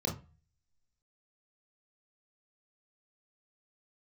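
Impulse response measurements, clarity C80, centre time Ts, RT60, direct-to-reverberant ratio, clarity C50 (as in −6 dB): 17.5 dB, 23 ms, 0.35 s, −1.5 dB, 9.5 dB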